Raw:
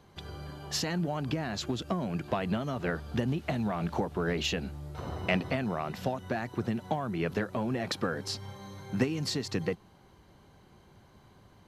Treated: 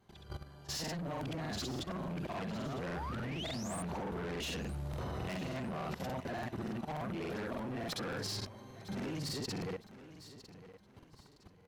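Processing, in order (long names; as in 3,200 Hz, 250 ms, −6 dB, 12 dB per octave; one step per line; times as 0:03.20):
every overlapping window played backwards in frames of 139 ms
sound drawn into the spectrogram rise, 0:02.74–0:03.80, 380–10,000 Hz −44 dBFS
tube saturation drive 37 dB, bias 0.2
output level in coarse steps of 15 dB
on a send: repeating echo 957 ms, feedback 33%, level −15 dB
on the sum: regular buffer underruns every 0.29 s, samples 2,048, repeat, from 0:00.83
level +6 dB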